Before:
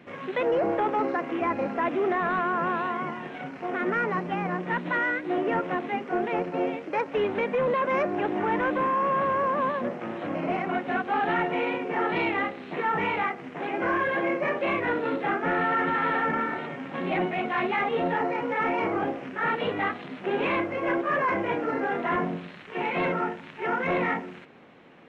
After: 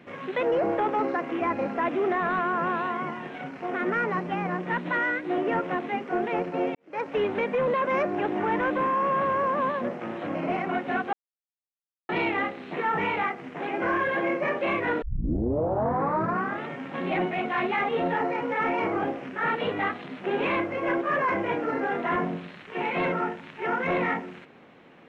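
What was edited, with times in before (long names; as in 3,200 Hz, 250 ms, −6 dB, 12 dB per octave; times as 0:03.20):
0:06.75–0:07.05: fade in quadratic
0:11.13–0:12.09: silence
0:15.02: tape start 1.67 s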